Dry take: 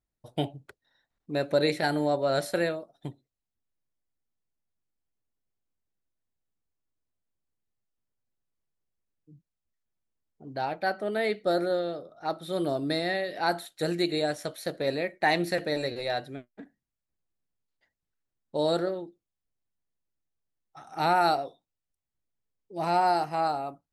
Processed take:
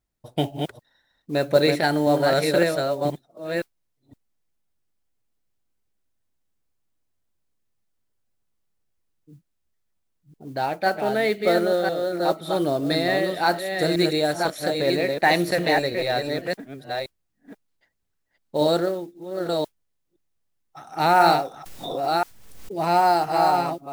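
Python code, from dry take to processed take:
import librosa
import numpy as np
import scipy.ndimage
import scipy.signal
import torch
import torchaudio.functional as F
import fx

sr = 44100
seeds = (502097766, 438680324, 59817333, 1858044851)

y = fx.reverse_delay(x, sr, ms=517, wet_db=-4.0)
y = fx.mod_noise(y, sr, seeds[0], snr_db=27)
y = fx.pre_swell(y, sr, db_per_s=38.0, at=(21.12, 22.78))
y = y * librosa.db_to_amplitude(5.5)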